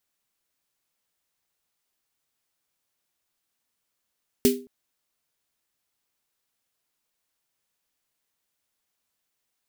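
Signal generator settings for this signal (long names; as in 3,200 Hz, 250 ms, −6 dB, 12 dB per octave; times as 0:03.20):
synth snare length 0.22 s, tones 250 Hz, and 400 Hz, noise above 2,100 Hz, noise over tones −6 dB, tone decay 0.36 s, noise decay 0.23 s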